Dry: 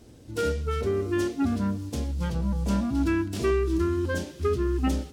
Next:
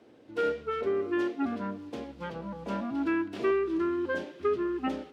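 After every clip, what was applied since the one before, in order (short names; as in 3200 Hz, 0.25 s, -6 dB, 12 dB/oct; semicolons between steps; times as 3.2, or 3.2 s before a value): HPF 150 Hz 12 dB/oct; three-band isolator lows -13 dB, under 280 Hz, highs -22 dB, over 3300 Hz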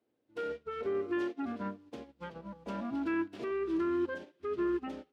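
limiter -27.5 dBFS, peak gain reduction 10.5 dB; upward expander 2.5:1, over -48 dBFS; gain +2.5 dB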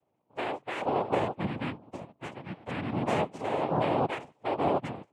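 spectral gate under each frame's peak -25 dB strong; noise vocoder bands 4; gain +4.5 dB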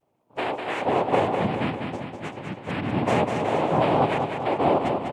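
vibrato 0.84 Hz 34 cents; feedback echo 0.199 s, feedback 56%, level -5.5 dB; gain +5.5 dB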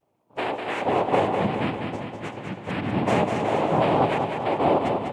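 reverb RT60 3.3 s, pre-delay 5 ms, DRR 12.5 dB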